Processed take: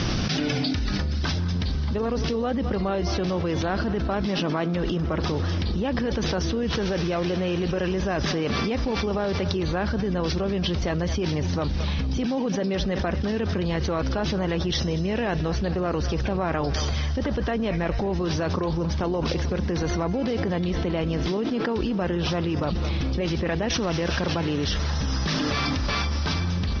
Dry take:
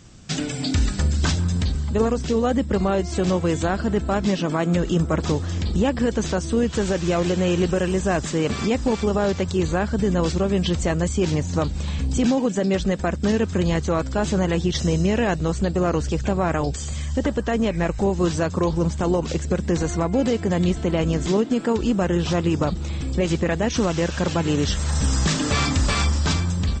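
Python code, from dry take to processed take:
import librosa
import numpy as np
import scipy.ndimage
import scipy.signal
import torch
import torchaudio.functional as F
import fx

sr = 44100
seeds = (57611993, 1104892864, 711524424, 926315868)

p1 = scipy.signal.sosfilt(scipy.signal.butter(16, 5800.0, 'lowpass', fs=sr, output='sos'), x)
p2 = fx.low_shelf(p1, sr, hz=210.0, db=-3.5)
p3 = p2 + fx.echo_thinned(p2, sr, ms=216, feedback_pct=62, hz=420.0, wet_db=-17.5, dry=0)
p4 = fx.env_flatten(p3, sr, amount_pct=100)
y = p4 * librosa.db_to_amplitude(-7.5)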